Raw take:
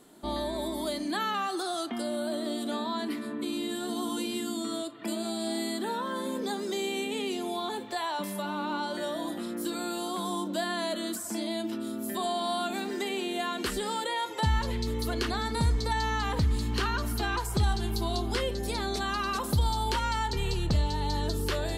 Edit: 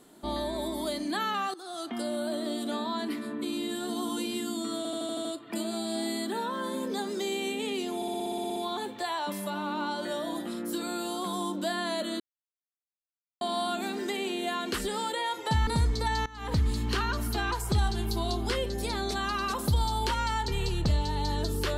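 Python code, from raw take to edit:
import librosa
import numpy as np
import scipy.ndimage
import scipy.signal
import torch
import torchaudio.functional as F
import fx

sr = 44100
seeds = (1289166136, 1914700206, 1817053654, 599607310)

y = fx.edit(x, sr, fx.fade_in_from(start_s=1.54, length_s=0.45, floor_db=-19.0),
    fx.stutter(start_s=4.77, slice_s=0.08, count=7),
    fx.stutter(start_s=7.48, slice_s=0.06, count=11),
    fx.silence(start_s=11.12, length_s=1.21),
    fx.cut(start_s=14.59, length_s=0.93),
    fx.fade_in_from(start_s=16.11, length_s=0.28, curve='qua', floor_db=-20.0), tone=tone)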